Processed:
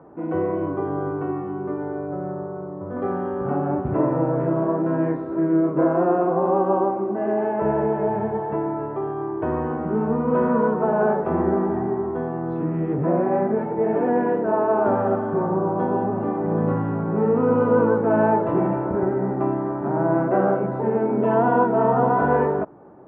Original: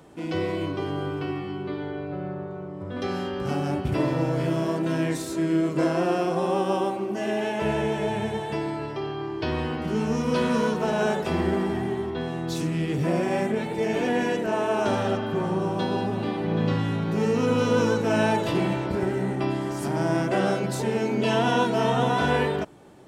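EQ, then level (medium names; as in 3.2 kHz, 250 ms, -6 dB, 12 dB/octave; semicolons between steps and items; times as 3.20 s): low-pass 1.3 kHz 24 dB/octave; distance through air 62 m; bass shelf 150 Hz -10.5 dB; +6.0 dB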